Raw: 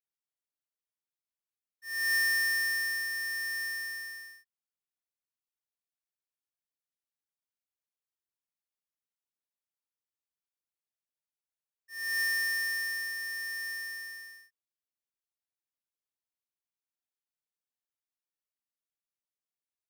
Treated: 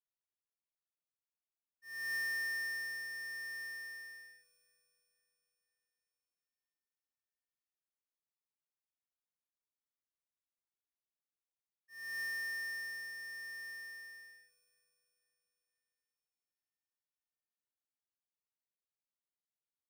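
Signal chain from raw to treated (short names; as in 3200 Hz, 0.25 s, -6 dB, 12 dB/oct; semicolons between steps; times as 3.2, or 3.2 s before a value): high shelf 2300 Hz -8 dB; echo with dull and thin repeats by turns 0.249 s, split 1900 Hz, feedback 68%, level -14 dB; gain -6.5 dB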